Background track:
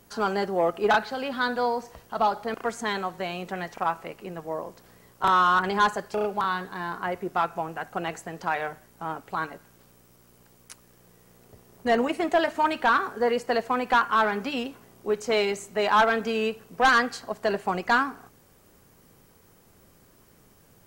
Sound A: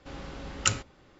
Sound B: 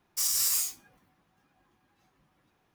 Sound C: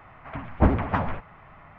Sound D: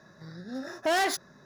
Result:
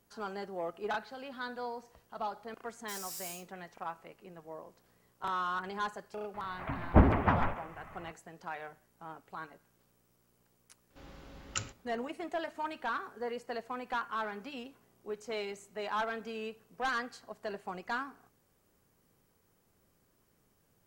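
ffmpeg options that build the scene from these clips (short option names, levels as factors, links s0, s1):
-filter_complex "[0:a]volume=0.2[s0];[3:a]asplit=2[s1][s2];[s2]adelay=140,highpass=300,lowpass=3400,asoftclip=type=hard:threshold=0.178,volume=0.398[s3];[s1][s3]amix=inputs=2:normalize=0[s4];[1:a]aecho=1:1:117:0.0668[s5];[2:a]atrim=end=2.74,asetpts=PTS-STARTPTS,volume=0.15,afade=t=in:d=0.004:c=hsin,afade=t=out:st=2.736:d=0.004:c=hsin,adelay=2710[s6];[s4]atrim=end=1.78,asetpts=PTS-STARTPTS,volume=0.75,afade=t=in:d=0.004:c=hsin,afade=t=out:st=1.776:d=0.004:c=hsin,adelay=279594S[s7];[s5]atrim=end=1.19,asetpts=PTS-STARTPTS,volume=0.282,afade=t=in:d=0.004:c=hsin,afade=t=out:st=1.186:d=0.004:c=hsin,adelay=480690S[s8];[s0][s6][s7][s8]amix=inputs=4:normalize=0"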